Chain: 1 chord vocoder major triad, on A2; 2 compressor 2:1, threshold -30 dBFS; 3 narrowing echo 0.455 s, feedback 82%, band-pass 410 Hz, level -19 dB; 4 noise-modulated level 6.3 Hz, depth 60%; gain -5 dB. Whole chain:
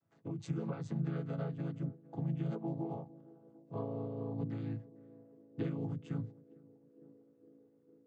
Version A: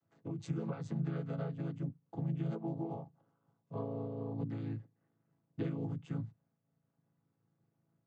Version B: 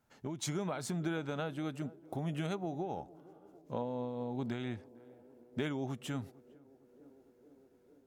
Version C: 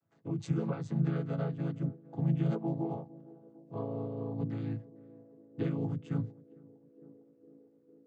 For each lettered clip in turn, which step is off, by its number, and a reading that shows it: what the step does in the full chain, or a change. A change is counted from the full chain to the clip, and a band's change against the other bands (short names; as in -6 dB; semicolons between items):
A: 3, momentary loudness spread change -10 LU; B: 1, 2 kHz band +9.0 dB; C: 2, mean gain reduction 4.0 dB